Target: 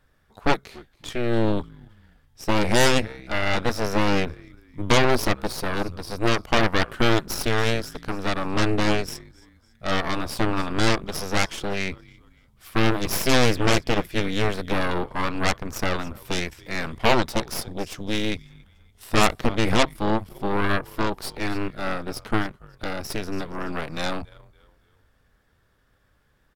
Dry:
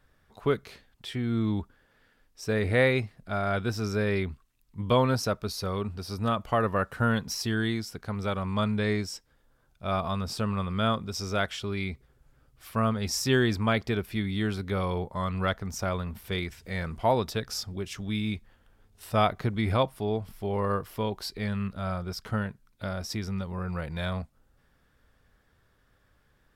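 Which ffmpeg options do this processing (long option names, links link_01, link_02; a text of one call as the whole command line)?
ffmpeg -i in.wav -filter_complex "[0:a]asplit=2[link_01][link_02];[link_02]asplit=3[link_03][link_04][link_05];[link_03]adelay=281,afreqshift=-64,volume=-20dB[link_06];[link_04]adelay=562,afreqshift=-128,volume=-28dB[link_07];[link_05]adelay=843,afreqshift=-192,volume=-35.9dB[link_08];[link_06][link_07][link_08]amix=inputs=3:normalize=0[link_09];[link_01][link_09]amix=inputs=2:normalize=0,aeval=exprs='0.299*(cos(1*acos(clip(val(0)/0.299,-1,1)))-cos(1*PI/2))+0.0841*(cos(7*acos(clip(val(0)/0.299,-1,1)))-cos(7*PI/2))+0.106*(cos(8*acos(clip(val(0)/0.299,-1,1)))-cos(8*PI/2))':channel_layout=same,volume=1.5dB" out.wav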